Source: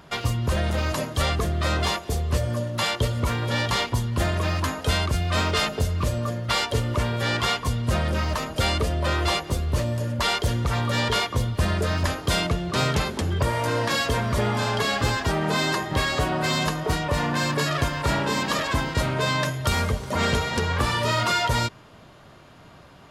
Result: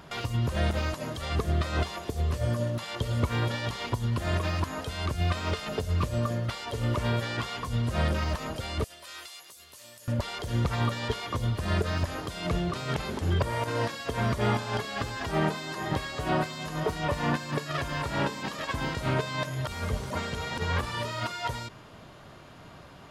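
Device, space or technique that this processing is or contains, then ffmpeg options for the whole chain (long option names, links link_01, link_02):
de-esser from a sidechain: -filter_complex "[0:a]asettb=1/sr,asplit=3[link_01][link_02][link_03];[link_01]atrim=end=8.844[link_04];[link_02]atrim=start=8.84:end=10.08,asetpts=PTS-STARTPTS,afade=type=in:duration=0.004:curve=qsin,afade=type=out:start_time=1.236:duration=0.004:curve=qsin,aderivative[link_05];[link_03]atrim=start=10.076[link_06];[link_04][link_05]acrossfade=duration=0.004:curve1=hsin:curve2=qsin[link_07];[link_07][link_06]acrossfade=duration=0.004:curve1=qsin:curve2=hsin,asplit=2[link_08][link_09];[link_09]highpass=frequency=6100:width=0.5412,highpass=frequency=6100:width=1.3066,apad=whole_len=1018864[link_10];[link_08][link_10]sidechaincompress=threshold=-49dB:ratio=12:attack=3.5:release=33"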